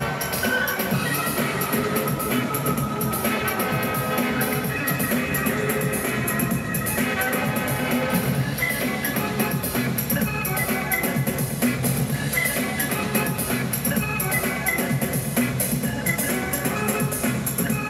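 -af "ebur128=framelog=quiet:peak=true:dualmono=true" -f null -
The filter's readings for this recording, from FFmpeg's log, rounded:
Integrated loudness:
  I:         -19.9 LUFS
  Threshold: -29.9 LUFS
Loudness range:
  LRA:         0.4 LU
  Threshold: -39.9 LUFS
  LRA low:   -20.1 LUFS
  LRA high:  -19.7 LUFS
True peak:
  Peak:       -8.3 dBFS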